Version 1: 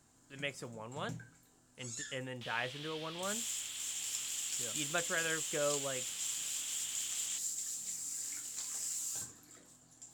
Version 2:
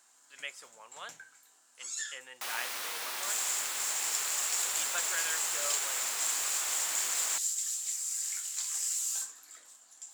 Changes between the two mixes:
first sound +6.5 dB; second sound: remove band-pass filter 3.2 kHz, Q 5.1; master: add high-pass 950 Hz 12 dB/octave

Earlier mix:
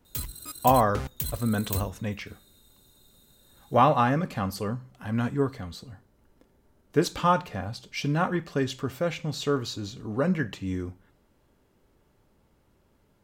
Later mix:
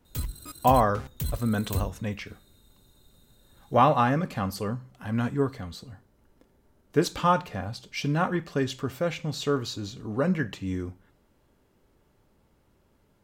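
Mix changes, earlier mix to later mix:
first sound: add tilt EQ -1.5 dB/octave; second sound -7.0 dB

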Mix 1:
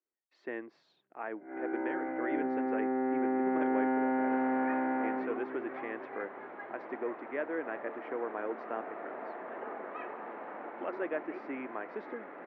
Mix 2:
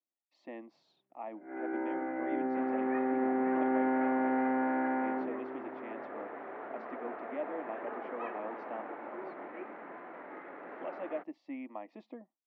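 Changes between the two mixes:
speech: add static phaser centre 410 Hz, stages 6; second sound: entry -1.75 s

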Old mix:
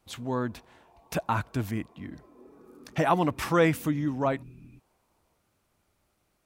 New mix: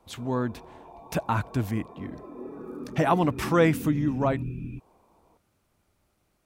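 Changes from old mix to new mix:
background +11.5 dB; master: add bass shelf 410 Hz +3.5 dB

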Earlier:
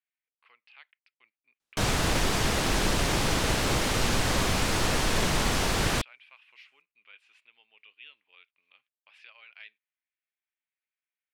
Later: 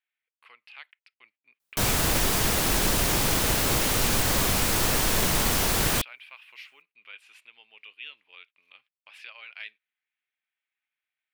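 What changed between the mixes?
speech +7.0 dB; master: remove distance through air 58 m

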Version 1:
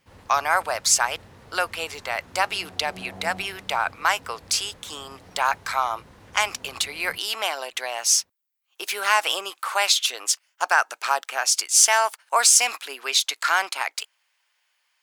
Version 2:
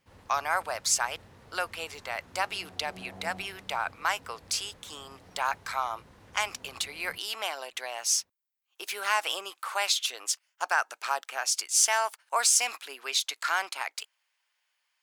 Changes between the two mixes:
speech -7.0 dB; background -5.5 dB

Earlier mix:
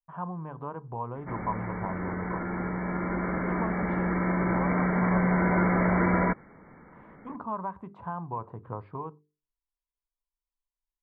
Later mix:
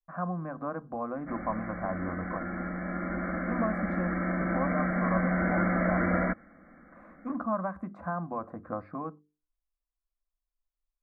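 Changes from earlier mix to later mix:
speech +7.5 dB; master: add static phaser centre 620 Hz, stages 8

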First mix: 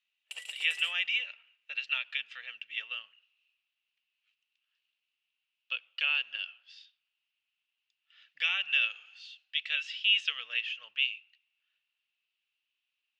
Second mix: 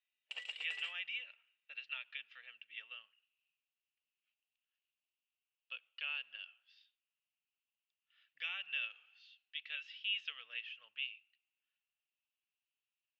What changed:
speech -9.5 dB; master: add distance through air 160 m

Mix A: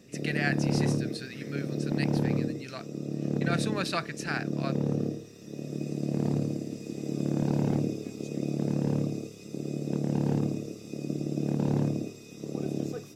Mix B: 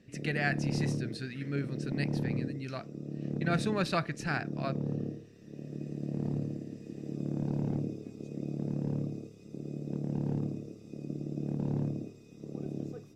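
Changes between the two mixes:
background -10.0 dB; master: add tilt EQ -2 dB/octave

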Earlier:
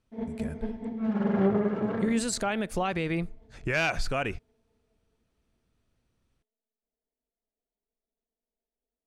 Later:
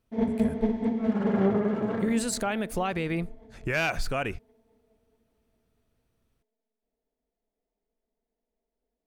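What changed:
speech: add treble shelf 5.7 kHz -9.5 dB; first sound +8.5 dB; master: remove distance through air 67 m

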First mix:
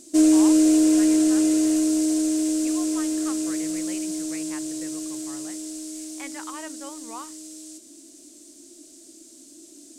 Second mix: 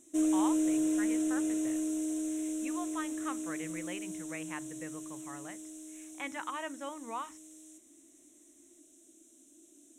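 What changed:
background -12.0 dB; master: add Butterworth band-stop 4.7 kHz, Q 2.3

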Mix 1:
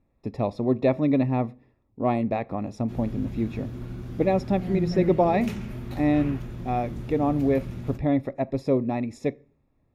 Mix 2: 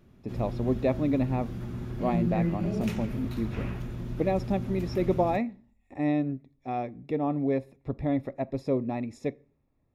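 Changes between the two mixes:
speech -4.5 dB; background: entry -2.60 s

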